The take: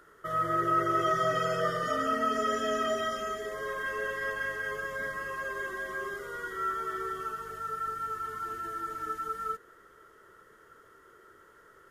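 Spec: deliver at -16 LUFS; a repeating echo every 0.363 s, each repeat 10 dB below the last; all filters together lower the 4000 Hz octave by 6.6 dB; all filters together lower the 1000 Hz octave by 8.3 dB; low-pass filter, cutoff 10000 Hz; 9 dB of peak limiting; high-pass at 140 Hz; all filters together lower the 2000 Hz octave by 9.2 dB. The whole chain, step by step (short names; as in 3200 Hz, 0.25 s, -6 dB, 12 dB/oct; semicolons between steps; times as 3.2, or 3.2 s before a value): HPF 140 Hz; LPF 10000 Hz; bell 1000 Hz -7.5 dB; bell 2000 Hz -8 dB; bell 4000 Hz -5 dB; limiter -31 dBFS; feedback echo 0.363 s, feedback 32%, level -10 dB; gain +24 dB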